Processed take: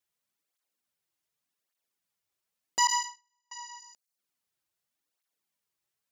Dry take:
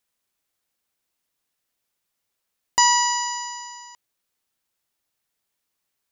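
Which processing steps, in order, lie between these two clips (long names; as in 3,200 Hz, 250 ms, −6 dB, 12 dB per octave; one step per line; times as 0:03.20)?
in parallel at −7 dB: soft clipping −16.5 dBFS, distortion −11 dB
0:02.87–0:03.52: on the sum: noise gate −16 dBFS, range −44 dB
0:03.79–0:04.19: gain on a spectral selection 270–4,000 Hz −7 dB
through-zero flanger with one copy inverted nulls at 0.86 Hz, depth 4.6 ms
level −7 dB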